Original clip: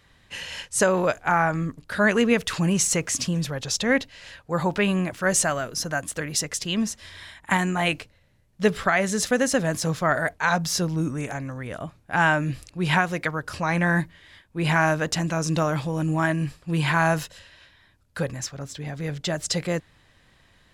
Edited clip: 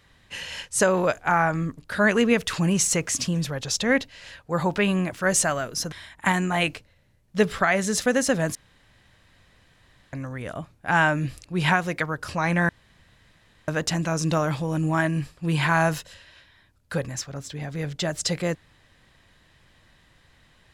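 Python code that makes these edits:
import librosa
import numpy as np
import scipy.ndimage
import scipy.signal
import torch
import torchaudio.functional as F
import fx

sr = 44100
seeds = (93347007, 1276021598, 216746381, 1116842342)

y = fx.edit(x, sr, fx.cut(start_s=5.92, length_s=1.25),
    fx.room_tone_fill(start_s=9.8, length_s=1.58),
    fx.room_tone_fill(start_s=13.94, length_s=0.99), tone=tone)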